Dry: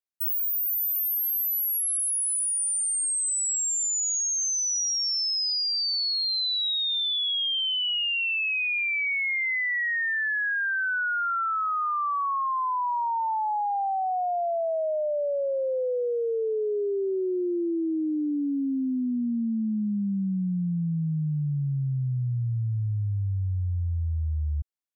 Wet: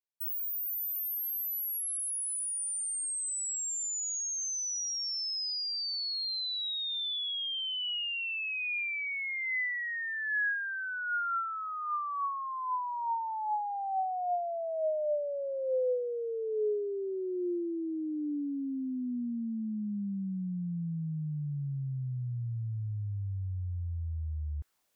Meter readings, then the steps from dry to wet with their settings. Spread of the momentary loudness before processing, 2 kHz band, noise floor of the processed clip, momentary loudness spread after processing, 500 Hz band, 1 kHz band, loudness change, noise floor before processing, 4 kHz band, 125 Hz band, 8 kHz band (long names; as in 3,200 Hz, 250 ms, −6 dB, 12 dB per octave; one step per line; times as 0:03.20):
5 LU, −7.0 dB, −36 dBFS, 5 LU, −5.5 dB, −7.0 dB, −7.5 dB, −27 dBFS, −8.0 dB, −8.0 dB, −8.0 dB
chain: dynamic equaliser 1,200 Hz, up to −3 dB, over −39 dBFS, Q 1.5
reversed playback
upward compression, threshold −49 dBFS
reversed playback
auto-filter bell 1.2 Hz 460–1,700 Hz +7 dB
level −8 dB